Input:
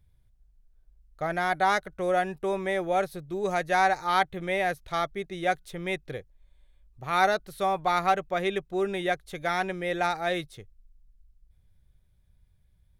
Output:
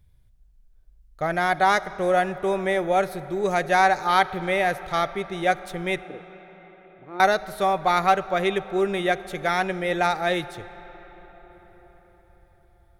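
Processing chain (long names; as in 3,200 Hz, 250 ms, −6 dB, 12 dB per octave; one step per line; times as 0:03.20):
0:06.04–0:07.20: resonant band-pass 330 Hz, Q 3.3
convolution reverb RT60 5.4 s, pre-delay 5 ms, DRR 15 dB
level +4.5 dB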